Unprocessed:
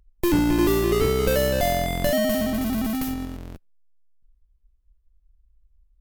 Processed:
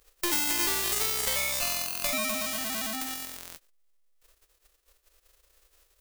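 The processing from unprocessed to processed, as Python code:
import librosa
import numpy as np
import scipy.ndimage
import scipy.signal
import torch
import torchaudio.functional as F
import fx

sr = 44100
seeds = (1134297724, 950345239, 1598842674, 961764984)

y = fx.envelope_flatten(x, sr, power=0.1)
y = fx.formant_shift(y, sr, semitones=4)
y = F.gain(torch.from_numpy(y), -8.0).numpy()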